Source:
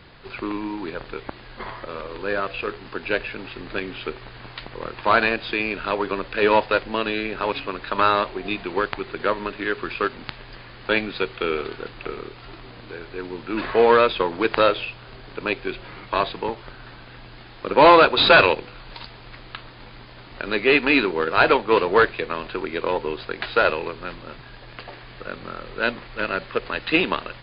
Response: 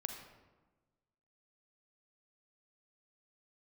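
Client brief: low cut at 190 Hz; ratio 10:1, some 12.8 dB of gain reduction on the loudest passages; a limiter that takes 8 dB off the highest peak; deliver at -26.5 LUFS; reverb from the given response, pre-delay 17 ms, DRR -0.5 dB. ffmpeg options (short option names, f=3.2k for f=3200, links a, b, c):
-filter_complex "[0:a]highpass=190,acompressor=threshold=-21dB:ratio=10,alimiter=limit=-16.5dB:level=0:latency=1,asplit=2[a][b];[1:a]atrim=start_sample=2205,adelay=17[c];[b][c]afir=irnorm=-1:irlink=0,volume=1.5dB[d];[a][d]amix=inputs=2:normalize=0,volume=1dB"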